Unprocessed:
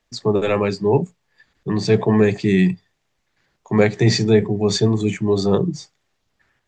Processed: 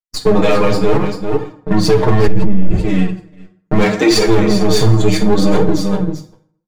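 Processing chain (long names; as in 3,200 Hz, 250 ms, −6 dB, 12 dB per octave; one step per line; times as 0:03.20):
gain on one half-wave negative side −12 dB
0:00.98–0:01.71: downward compressor, threshold −33 dBFS, peak gain reduction 11.5 dB
0:03.82–0:04.26: high-pass filter 130 Hz → 470 Hz 24 dB per octave
repeating echo 391 ms, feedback 18%, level −9 dB
noise gate −38 dBFS, range −49 dB
comb filter 6.5 ms, depth 91%
hard clipping −10.5 dBFS, distortion −14 dB
0:02.27–0:02.71: spectral tilt −3.5 dB per octave
convolution reverb RT60 0.60 s, pre-delay 5 ms, DRR 3 dB
flanger 0.71 Hz, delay 2.1 ms, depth 6.3 ms, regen +41%
boost into a limiter +12.5 dB
level −1 dB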